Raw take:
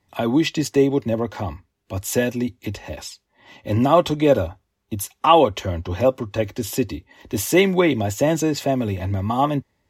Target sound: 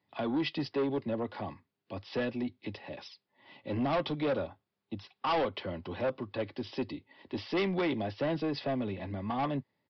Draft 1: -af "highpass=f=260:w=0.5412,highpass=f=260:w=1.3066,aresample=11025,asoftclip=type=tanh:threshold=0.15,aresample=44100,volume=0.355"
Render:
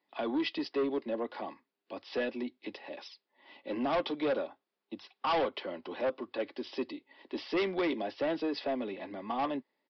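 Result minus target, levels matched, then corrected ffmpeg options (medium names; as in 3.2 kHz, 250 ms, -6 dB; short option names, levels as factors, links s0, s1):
125 Hz band -14.0 dB
-af "highpass=f=120:w=0.5412,highpass=f=120:w=1.3066,aresample=11025,asoftclip=type=tanh:threshold=0.15,aresample=44100,volume=0.355"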